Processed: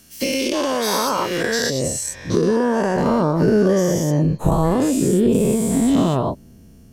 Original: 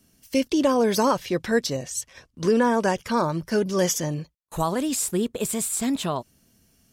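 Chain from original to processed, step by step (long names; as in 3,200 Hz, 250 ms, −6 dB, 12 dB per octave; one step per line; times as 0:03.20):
every bin's largest magnitude spread in time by 240 ms
downward compressor 6 to 1, threshold −23 dBFS, peak gain reduction 12 dB
tilt shelving filter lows −3 dB, about 820 Hz, from 0:01.69 lows +4.5 dB, from 0:02.93 lows +8.5 dB
level +5.5 dB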